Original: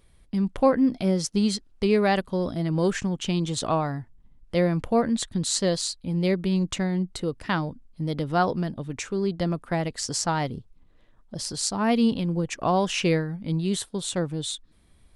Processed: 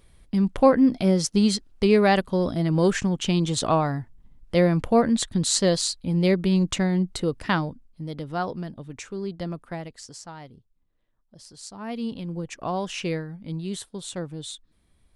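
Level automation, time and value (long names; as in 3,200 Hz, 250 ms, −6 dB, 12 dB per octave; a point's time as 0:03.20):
0:07.50 +3 dB
0:08.04 −5.5 dB
0:09.63 −5.5 dB
0:10.24 −15.5 dB
0:11.51 −15.5 dB
0:12.34 −5.5 dB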